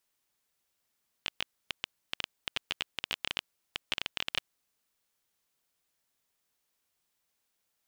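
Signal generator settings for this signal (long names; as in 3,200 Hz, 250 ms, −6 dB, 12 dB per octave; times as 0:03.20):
Geiger counter clicks 13 per second −13 dBFS 3.16 s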